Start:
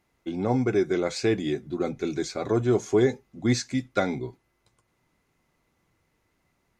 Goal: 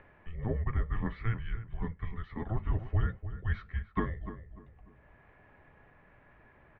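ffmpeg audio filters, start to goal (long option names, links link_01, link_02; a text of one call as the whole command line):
ffmpeg -i in.wav -filter_complex "[0:a]equalizer=frequency=140:width_type=o:width=0.37:gain=-13,asplit=2[link_01][link_02];[link_02]adelay=297,lowpass=frequency=1700:poles=1,volume=-11dB,asplit=2[link_03][link_04];[link_04]adelay=297,lowpass=frequency=1700:poles=1,volume=0.19,asplit=2[link_05][link_06];[link_06]adelay=297,lowpass=frequency=1700:poles=1,volume=0.19[link_07];[link_01][link_03][link_05][link_07]amix=inputs=4:normalize=0,acompressor=mode=upward:threshold=-34dB:ratio=2.5,highpass=frequency=170:width_type=q:width=0.5412,highpass=frequency=170:width_type=q:width=1.307,lowpass=frequency=2800:width_type=q:width=0.5176,lowpass=frequency=2800:width_type=q:width=0.7071,lowpass=frequency=2800:width_type=q:width=1.932,afreqshift=-330,volume=-6dB" out.wav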